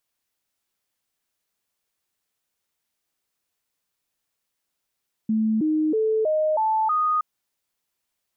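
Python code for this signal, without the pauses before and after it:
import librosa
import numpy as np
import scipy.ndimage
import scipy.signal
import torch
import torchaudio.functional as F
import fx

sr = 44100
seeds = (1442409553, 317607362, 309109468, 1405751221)

y = fx.stepped_sweep(sr, from_hz=219.0, direction='up', per_octave=2, tones=6, dwell_s=0.32, gap_s=0.0, level_db=-18.5)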